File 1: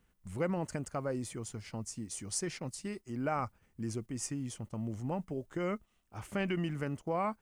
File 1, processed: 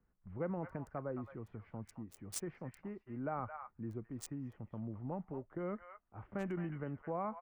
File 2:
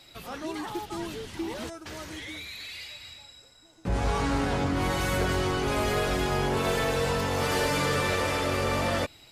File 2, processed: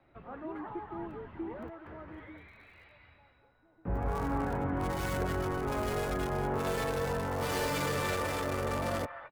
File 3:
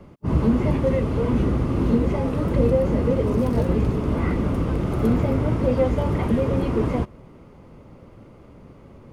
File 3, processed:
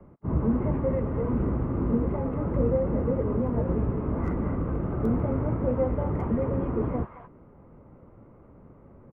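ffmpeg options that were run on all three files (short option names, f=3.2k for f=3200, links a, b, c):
-filter_complex "[0:a]acrossover=split=280|730|1800[a][b][c][d];[c]aecho=1:1:41|218|231:0.112|0.596|0.224[e];[d]acrusher=bits=4:mix=0:aa=0.5[f];[a][b][e][f]amix=inputs=4:normalize=0,volume=-5.5dB"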